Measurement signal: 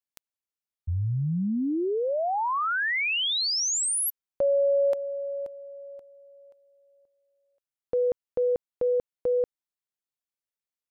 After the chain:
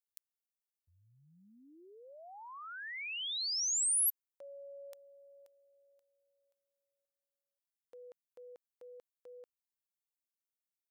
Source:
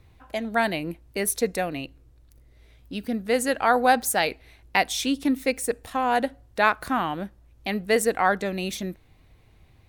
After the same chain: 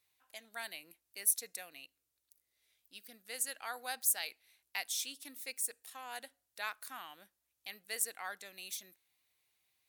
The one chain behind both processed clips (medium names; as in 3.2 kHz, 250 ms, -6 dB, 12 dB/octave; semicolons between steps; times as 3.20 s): differentiator; trim -5.5 dB